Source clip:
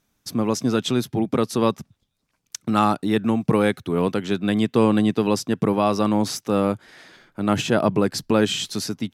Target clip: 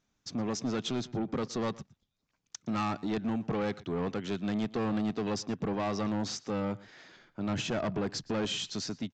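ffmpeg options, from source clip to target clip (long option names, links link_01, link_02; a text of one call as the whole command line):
ffmpeg -i in.wav -filter_complex "[0:a]aresample=16000,asoftclip=type=tanh:threshold=-19.5dB,aresample=44100,asplit=2[link_01][link_02];[link_02]adelay=116.6,volume=-21dB,highshelf=frequency=4000:gain=-2.62[link_03];[link_01][link_03]amix=inputs=2:normalize=0,volume=-7dB" out.wav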